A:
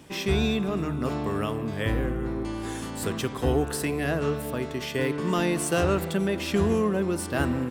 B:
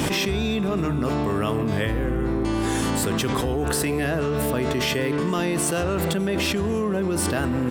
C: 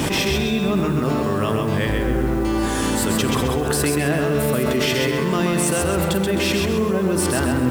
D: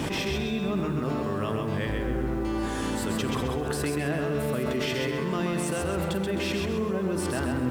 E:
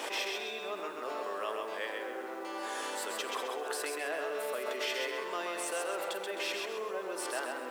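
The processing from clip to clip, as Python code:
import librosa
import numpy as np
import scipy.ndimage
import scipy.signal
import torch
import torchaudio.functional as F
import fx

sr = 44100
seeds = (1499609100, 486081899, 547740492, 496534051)

y1 = fx.env_flatten(x, sr, amount_pct=100)
y1 = F.gain(torch.from_numpy(y1), -3.0).numpy()
y2 = fx.mod_noise(y1, sr, seeds[0], snr_db=29)
y2 = fx.echo_feedback(y2, sr, ms=131, feedback_pct=37, wet_db=-3.5)
y2 = F.gain(torch.from_numpy(y2), 2.0).numpy()
y3 = fx.high_shelf(y2, sr, hz=6400.0, db=-8.0)
y3 = F.gain(torch.from_numpy(y3), -8.0).numpy()
y4 = scipy.signal.sosfilt(scipy.signal.butter(4, 470.0, 'highpass', fs=sr, output='sos'), y3)
y4 = F.gain(torch.from_numpy(y4), -3.0).numpy()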